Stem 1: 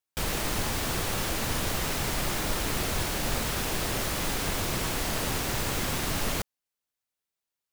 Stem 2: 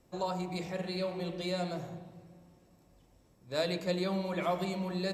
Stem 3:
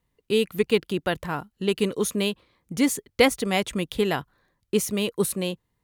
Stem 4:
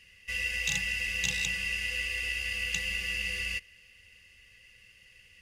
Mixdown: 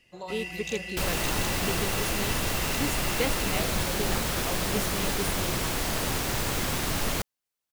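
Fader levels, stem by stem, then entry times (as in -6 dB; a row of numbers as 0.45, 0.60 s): +1.0, -5.5, -11.0, -7.0 dB; 0.80, 0.00, 0.00, 0.00 s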